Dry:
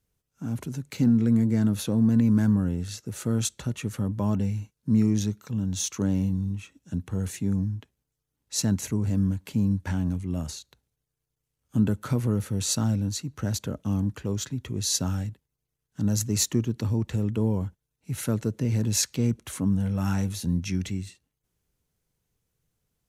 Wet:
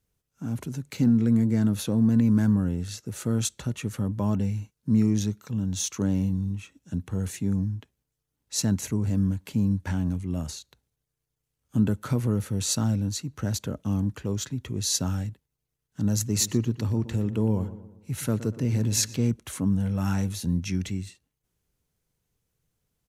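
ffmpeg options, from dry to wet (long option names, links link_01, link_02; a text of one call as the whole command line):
ffmpeg -i in.wav -filter_complex "[0:a]asplit=3[link_01][link_02][link_03];[link_01]afade=type=out:start_time=16.34:duration=0.02[link_04];[link_02]asplit=2[link_05][link_06];[link_06]adelay=119,lowpass=frequency=2000:poles=1,volume=-13.5dB,asplit=2[link_07][link_08];[link_08]adelay=119,lowpass=frequency=2000:poles=1,volume=0.48,asplit=2[link_09][link_10];[link_10]adelay=119,lowpass=frequency=2000:poles=1,volume=0.48,asplit=2[link_11][link_12];[link_12]adelay=119,lowpass=frequency=2000:poles=1,volume=0.48,asplit=2[link_13][link_14];[link_14]adelay=119,lowpass=frequency=2000:poles=1,volume=0.48[link_15];[link_05][link_07][link_09][link_11][link_13][link_15]amix=inputs=6:normalize=0,afade=type=in:start_time=16.34:duration=0.02,afade=type=out:start_time=19.29:duration=0.02[link_16];[link_03]afade=type=in:start_time=19.29:duration=0.02[link_17];[link_04][link_16][link_17]amix=inputs=3:normalize=0" out.wav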